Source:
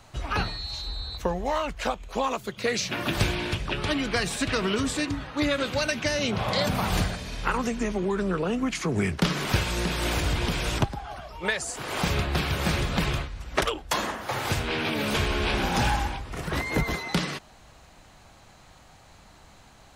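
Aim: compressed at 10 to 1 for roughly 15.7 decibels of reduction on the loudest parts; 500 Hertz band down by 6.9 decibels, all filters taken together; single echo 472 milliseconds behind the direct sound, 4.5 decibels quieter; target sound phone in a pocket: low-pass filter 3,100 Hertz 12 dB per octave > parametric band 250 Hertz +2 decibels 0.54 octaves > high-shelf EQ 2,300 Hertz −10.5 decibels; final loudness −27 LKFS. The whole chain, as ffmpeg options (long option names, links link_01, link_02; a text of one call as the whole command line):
ffmpeg -i in.wav -af "equalizer=frequency=500:width_type=o:gain=-8.5,acompressor=threshold=-36dB:ratio=10,lowpass=3100,equalizer=frequency=250:width_type=o:width=0.54:gain=2,highshelf=frequency=2300:gain=-10.5,aecho=1:1:472:0.596,volume=14dB" out.wav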